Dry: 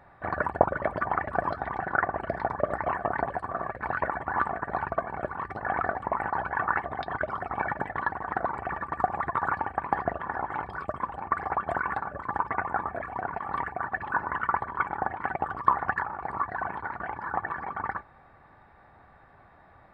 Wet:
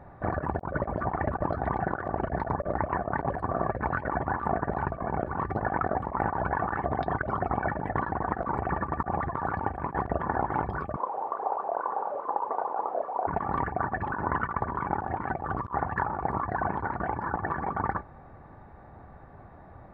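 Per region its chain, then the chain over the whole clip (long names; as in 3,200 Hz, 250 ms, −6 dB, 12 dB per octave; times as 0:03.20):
0:10.96–0:13.27: linear delta modulator 64 kbit/s, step −30 dBFS + Chebyshev band-pass filter 470–1,000 Hz + double-tracking delay 31 ms −11 dB
whole clip: tilt shelving filter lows +9 dB, about 1,100 Hz; compressor whose output falls as the input rises −28 dBFS, ratio −0.5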